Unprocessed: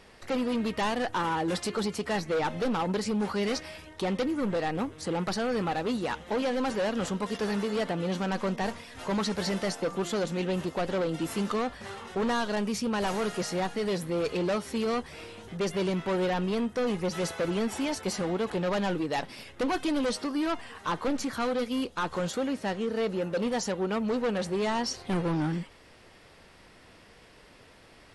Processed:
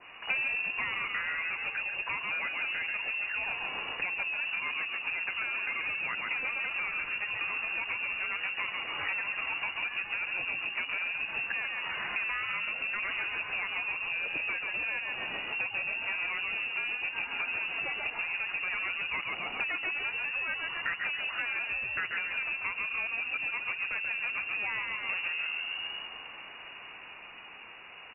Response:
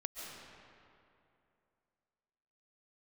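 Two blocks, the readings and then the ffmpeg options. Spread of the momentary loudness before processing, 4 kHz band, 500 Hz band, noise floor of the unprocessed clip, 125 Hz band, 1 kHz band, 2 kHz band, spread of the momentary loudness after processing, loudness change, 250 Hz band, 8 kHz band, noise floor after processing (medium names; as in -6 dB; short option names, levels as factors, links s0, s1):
4 LU, 0.0 dB, -21.0 dB, -55 dBFS, under -20 dB, -8.0 dB, +8.5 dB, 2 LU, -1.5 dB, -26.0 dB, under -40 dB, -47 dBFS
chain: -filter_complex "[0:a]dynaudnorm=f=420:g=13:m=1.88,asplit=2[s0][s1];[s1]asplit=6[s2][s3][s4][s5][s6][s7];[s2]adelay=136,afreqshift=-59,volume=0.562[s8];[s3]adelay=272,afreqshift=-118,volume=0.288[s9];[s4]adelay=408,afreqshift=-177,volume=0.146[s10];[s5]adelay=544,afreqshift=-236,volume=0.075[s11];[s6]adelay=680,afreqshift=-295,volume=0.038[s12];[s7]adelay=816,afreqshift=-354,volume=0.0195[s13];[s8][s9][s10][s11][s12][s13]amix=inputs=6:normalize=0[s14];[s0][s14]amix=inputs=2:normalize=0,lowpass=f=2500:t=q:w=0.5098,lowpass=f=2500:t=q:w=0.6013,lowpass=f=2500:t=q:w=0.9,lowpass=f=2500:t=q:w=2.563,afreqshift=-2900,acompressor=threshold=0.0224:ratio=8,adynamicequalizer=threshold=0.00398:dfrequency=2000:dqfactor=0.7:tfrequency=2000:tqfactor=0.7:attack=5:release=100:ratio=0.375:range=3:mode=cutabove:tftype=highshelf,volume=1.88"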